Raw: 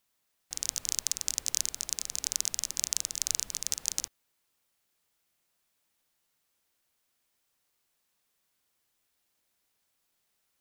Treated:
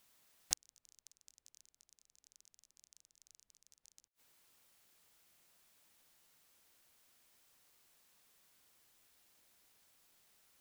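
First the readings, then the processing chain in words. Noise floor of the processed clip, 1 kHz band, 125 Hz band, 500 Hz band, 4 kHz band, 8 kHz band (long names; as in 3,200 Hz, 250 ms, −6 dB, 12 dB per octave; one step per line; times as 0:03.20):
below −85 dBFS, −14.5 dB, −16.0 dB, −16.0 dB, −18.0 dB, −18.5 dB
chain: gate with flip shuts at −15 dBFS, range −42 dB
level +6.5 dB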